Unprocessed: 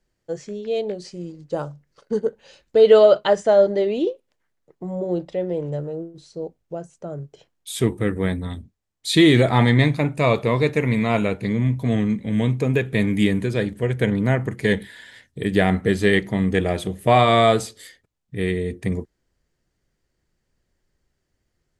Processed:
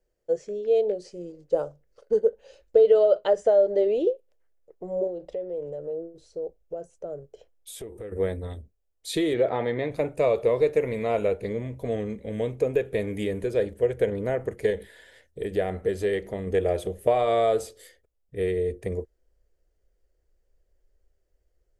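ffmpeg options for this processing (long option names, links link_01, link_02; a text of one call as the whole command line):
ffmpeg -i in.wav -filter_complex "[0:a]asettb=1/sr,asplit=3[link_01][link_02][link_03];[link_01]atrim=end=5.074[link_04];[link_02]atrim=start=5.07:end=8.12,asetpts=PTS-STARTPTS,afade=type=in:duration=0.004:curve=qsin,afade=type=out:start_time=3.046:duration=0.004:curve=qsin,acompressor=threshold=-29dB:ratio=10:attack=3.2:release=140:knee=1:detection=peak[link_05];[link_03]atrim=start=8.116[link_06];[link_04][link_05]acrossfade=duration=0.004:curve1=hsin:curve2=qsin[link_07];[link_07][link_06]acrossfade=duration=0.004:curve1=qsin:curve2=hsin,asplit=3[link_08][link_09][link_10];[link_08]afade=type=out:start_time=9.33:duration=0.02[link_11];[link_09]highpass=130,lowpass=3400,afade=type=in:start_time=9.33:duration=0.02,afade=type=out:start_time=9.9:duration=0.02[link_12];[link_10]afade=type=in:start_time=9.9:duration=0.02[link_13];[link_11][link_12][link_13]amix=inputs=3:normalize=0,asettb=1/sr,asplit=3[link_14][link_15][link_16];[link_14]atrim=end=14.704[link_17];[link_15]atrim=start=14.7:end=16.47,asetpts=PTS-STARTPTS,afade=type=in:duration=0.004:curve=qsin,afade=type=out:start_time=1.766:duration=0.004:curve=qsin,acompressor=threshold=-25dB:ratio=1.5:attack=3.2:release=140:knee=1:detection=peak[link_18];[link_16]atrim=start=16.466[link_19];[link_17][link_18]acrossfade=duration=0.004:curve1=hsin:curve2=qsin[link_20];[link_20][link_19]acrossfade=duration=0.004:curve1=qsin:curve2=hsin,asubboost=boost=3:cutoff=77,acompressor=threshold=-17dB:ratio=6,equalizer=frequency=125:width_type=o:width=1:gain=-10,equalizer=frequency=250:width_type=o:width=1:gain=-8,equalizer=frequency=500:width_type=o:width=1:gain=10,equalizer=frequency=1000:width_type=o:width=1:gain=-7,equalizer=frequency=2000:width_type=o:width=1:gain=-5,equalizer=frequency=4000:width_type=o:width=1:gain=-7,equalizer=frequency=8000:width_type=o:width=1:gain=-4,volume=-2dB" out.wav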